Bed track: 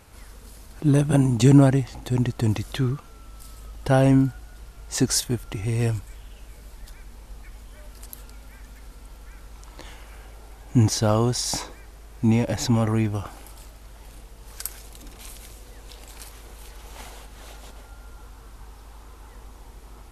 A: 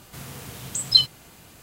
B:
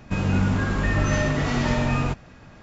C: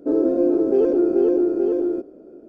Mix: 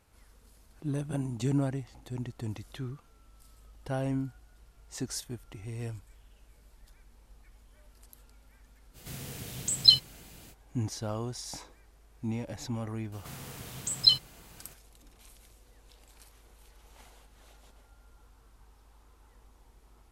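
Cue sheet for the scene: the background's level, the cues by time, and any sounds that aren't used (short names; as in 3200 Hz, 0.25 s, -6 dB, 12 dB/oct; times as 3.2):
bed track -14.5 dB
8.93 add A -2 dB, fades 0.05 s + bell 1100 Hz -8 dB 1.1 oct
13.12 add A -5 dB
not used: B, C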